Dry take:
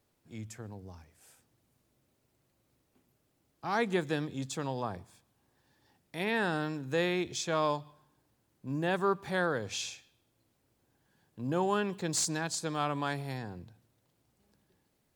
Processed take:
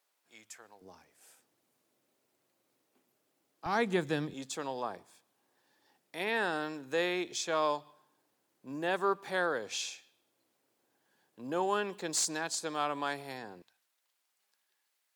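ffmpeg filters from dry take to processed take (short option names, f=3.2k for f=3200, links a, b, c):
-af "asetnsamples=n=441:p=0,asendcmd='0.81 highpass f 310;3.66 highpass f 110;4.34 highpass f 330;13.62 highpass f 1300',highpass=810"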